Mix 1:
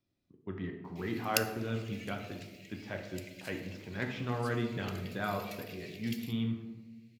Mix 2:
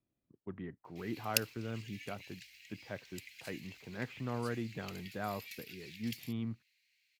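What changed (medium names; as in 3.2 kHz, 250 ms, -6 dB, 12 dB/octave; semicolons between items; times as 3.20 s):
speech: add distance through air 370 m; reverb: off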